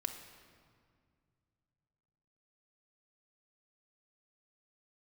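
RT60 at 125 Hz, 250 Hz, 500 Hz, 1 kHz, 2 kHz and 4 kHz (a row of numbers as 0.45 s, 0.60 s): 3.6 s, 2.8 s, 2.2 s, 2.0 s, 1.7 s, 1.4 s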